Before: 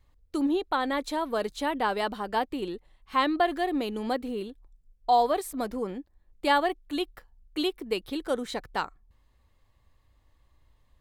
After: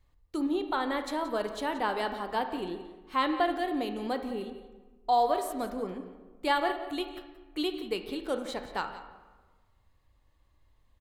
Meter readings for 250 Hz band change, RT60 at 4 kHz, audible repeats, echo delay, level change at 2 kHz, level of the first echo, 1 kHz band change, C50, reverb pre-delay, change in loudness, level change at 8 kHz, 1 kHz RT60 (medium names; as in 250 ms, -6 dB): -3.0 dB, 0.85 s, 1, 176 ms, -2.5 dB, -15.0 dB, -2.5 dB, 8.0 dB, 18 ms, -2.5 dB, -3.5 dB, 1.3 s